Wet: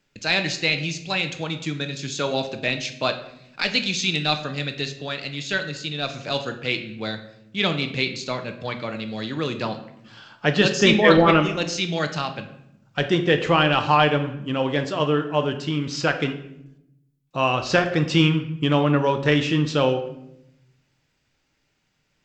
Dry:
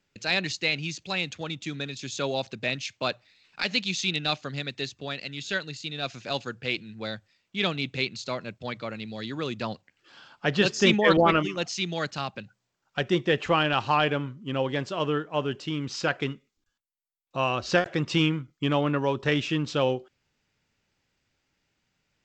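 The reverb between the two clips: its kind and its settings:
rectangular room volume 220 cubic metres, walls mixed, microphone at 0.49 metres
level +4 dB

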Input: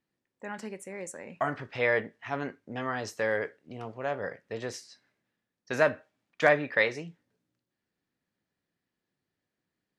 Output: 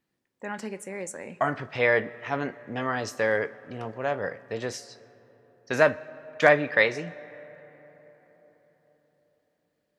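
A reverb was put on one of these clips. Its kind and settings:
comb and all-pass reverb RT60 4.7 s, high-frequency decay 0.4×, pre-delay 75 ms, DRR 20 dB
level +4 dB

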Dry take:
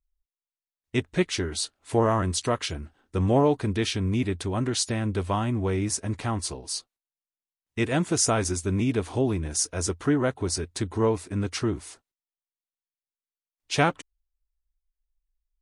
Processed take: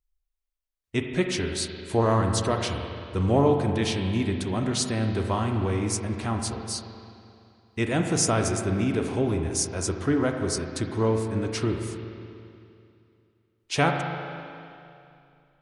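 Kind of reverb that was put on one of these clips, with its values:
spring reverb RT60 2.6 s, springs 36/43 ms, chirp 40 ms, DRR 3.5 dB
level −1 dB

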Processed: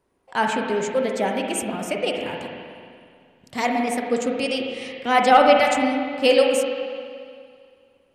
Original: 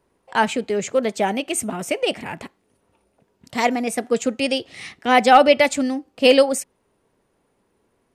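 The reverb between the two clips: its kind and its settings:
spring reverb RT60 2.2 s, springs 38/46/53 ms, chirp 50 ms, DRR 1 dB
level −4 dB

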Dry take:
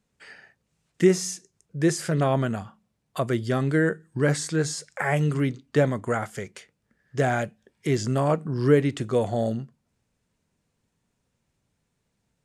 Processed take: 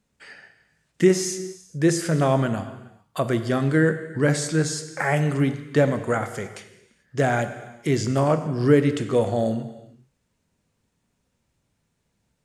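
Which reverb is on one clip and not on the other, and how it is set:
reverb whose tail is shaped and stops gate 460 ms falling, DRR 9 dB
level +2 dB

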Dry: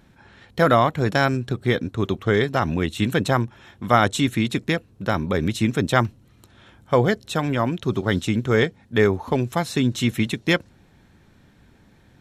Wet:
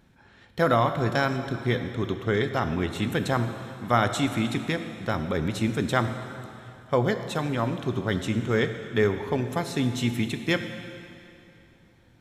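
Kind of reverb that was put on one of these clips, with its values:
dense smooth reverb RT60 2.7 s, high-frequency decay 0.95×, DRR 7.5 dB
level −5.5 dB

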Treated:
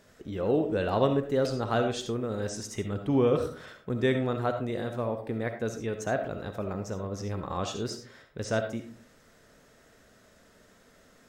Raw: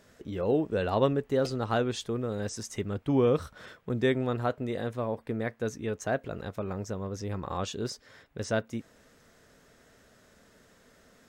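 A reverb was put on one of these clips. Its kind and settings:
comb and all-pass reverb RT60 0.44 s, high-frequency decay 0.4×, pre-delay 25 ms, DRR 6.5 dB

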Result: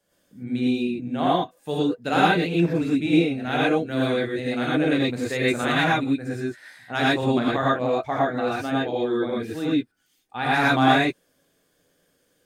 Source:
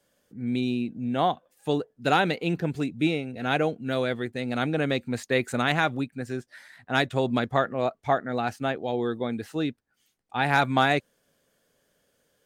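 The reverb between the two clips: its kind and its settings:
reverb whose tail is shaped and stops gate 140 ms rising, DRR −6 dB
level −4 dB

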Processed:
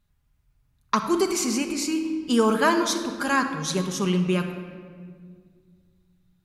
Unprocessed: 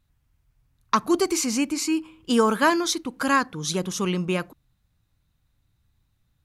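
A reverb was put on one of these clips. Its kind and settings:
rectangular room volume 3,000 cubic metres, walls mixed, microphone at 1.3 metres
level −2 dB

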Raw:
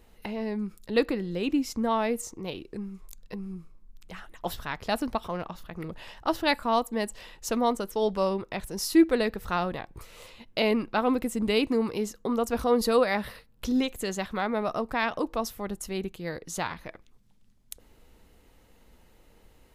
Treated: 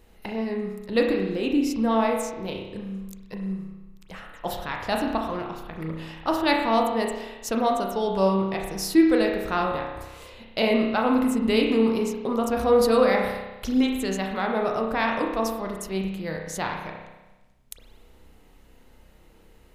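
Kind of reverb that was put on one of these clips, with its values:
spring reverb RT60 1.1 s, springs 31 ms, chirp 30 ms, DRR 1 dB
level +1 dB

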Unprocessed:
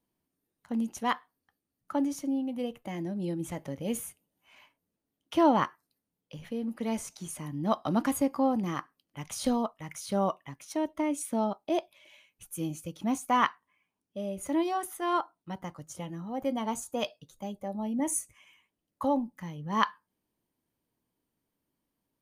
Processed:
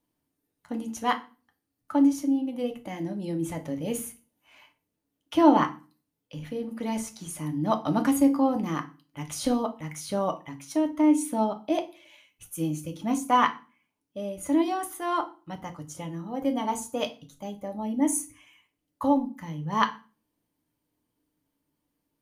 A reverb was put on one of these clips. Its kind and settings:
feedback delay network reverb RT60 0.34 s, low-frequency decay 1.4×, high-frequency decay 0.9×, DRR 5 dB
level +1.5 dB

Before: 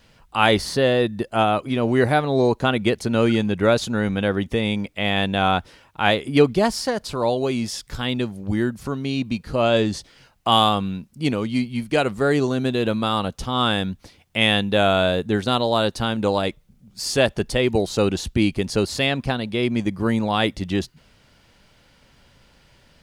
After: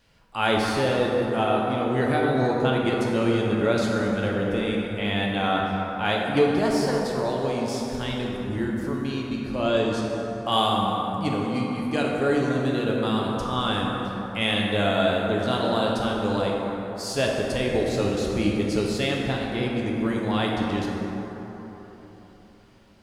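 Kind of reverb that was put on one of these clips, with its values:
dense smooth reverb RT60 4 s, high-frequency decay 0.4×, DRR −2.5 dB
level −8 dB

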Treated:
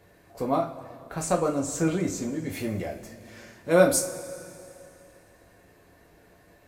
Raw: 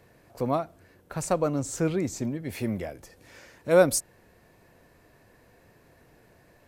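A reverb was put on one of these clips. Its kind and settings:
coupled-rooms reverb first 0.29 s, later 2.7 s, from −19 dB, DRR −0.5 dB
level −1.5 dB

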